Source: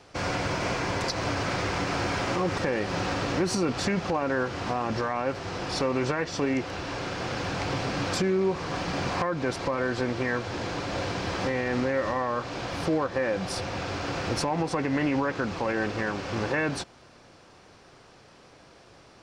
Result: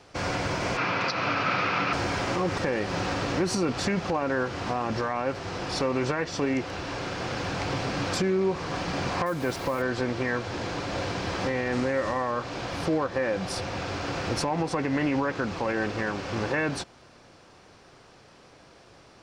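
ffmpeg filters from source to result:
-filter_complex "[0:a]asettb=1/sr,asplit=3[a][b][c];[a]atrim=end=0.774[d];[b]atrim=start=0.77:end=1.93,asetpts=PTS-STARTPTS,afade=t=in:d=0.004:c=qsin,afade=t=out:st=1.156:d=0.004:c=qsin,highpass=f=120:w=0.5412,highpass=f=120:w=1.3066,equalizer=f=370:t=q:w=4:g=-4,equalizer=f=1.3k:t=q:w=4:g=10,equalizer=f=2.5k:t=q:w=4:g=9,lowpass=f=5.1k:w=0.5412,lowpass=f=5.1k:w=1.3066[e];[c]atrim=start=1.926[f];[d][e]acrossfade=d=0.004:c1=hsin:c2=qsin[g];[g][f]acrossfade=d=0.004:c1=qsin:c2=hsin,asettb=1/sr,asplit=3[h][i][j];[h]atrim=end=9.264[k];[i]atrim=start=9.26:end=9.82,asetpts=PTS-STARTPTS,afade=t=in:d=0.004:c=qsin,afade=t=out:st=0.556:d=0.004:c=qsin,acrusher=bits=6:mix=0:aa=0.5[l];[j]atrim=start=9.816[m];[k][l]acrossfade=d=0.004:c1=hsin:c2=qsin[n];[n][m]acrossfade=d=0.004:c1=qsin:c2=hsin,asettb=1/sr,asplit=3[o][p][q];[o]atrim=end=11.724[r];[p]atrim=start=11.72:end=12.31,asetpts=PTS-STARTPTS,afade=t=in:d=0.004:c=qsin,afade=t=out:st=0.586:d=0.004:c=qsin,equalizer=f=8.5k:w=1.5:g=6[s];[q]atrim=start=12.306[t];[r][s]acrossfade=d=0.004:c1=hsin:c2=qsin[u];[u][t]acrossfade=d=0.004:c1=qsin:c2=hsin"

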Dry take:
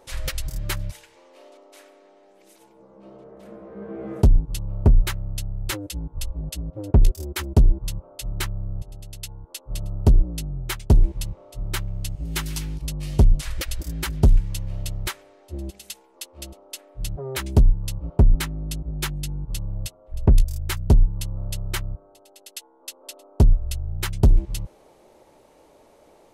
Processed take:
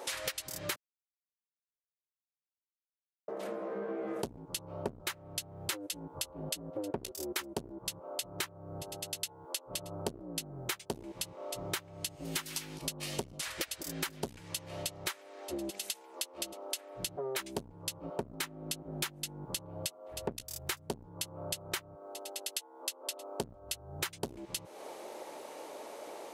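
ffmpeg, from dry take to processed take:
-filter_complex "[0:a]asplit=3[a][b][c];[a]atrim=end=0.76,asetpts=PTS-STARTPTS,afade=t=out:st=0.756:d=0.004:c=hsin[d];[b]atrim=start=0.76:end=3.28,asetpts=PTS-STARTPTS,volume=0[e];[c]atrim=start=3.28,asetpts=PTS-STARTPTS,afade=t=in:d=0.004:c=hsin[f];[d][e][f]concat=n=3:v=0:a=1,highpass=300,lowshelf=f=380:g=-4.5,acompressor=threshold=-46dB:ratio=6,volume=10.5dB"

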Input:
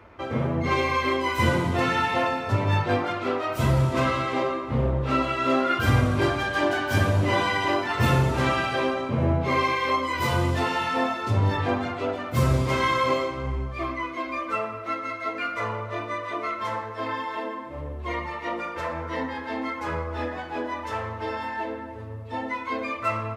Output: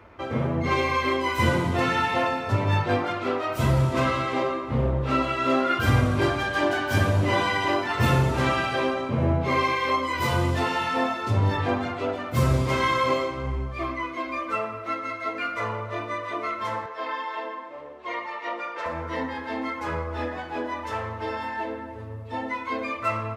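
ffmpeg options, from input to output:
-filter_complex "[0:a]asettb=1/sr,asplit=3[a][b][c];[a]atrim=end=16.864[d];[b]atrim=start=16.86:end=18.86,asetpts=PTS-STARTPTS,afade=t=in:d=0.004:c=qsin,afade=t=out:st=1.996:d=0.004:c=qsin,highpass=460,lowpass=6k[e];[c]atrim=start=18.856[f];[d][e]acrossfade=d=0.004:c1=hsin:c2=qsin[g];[g][f]acrossfade=d=0.004:c1=qsin:c2=hsin"

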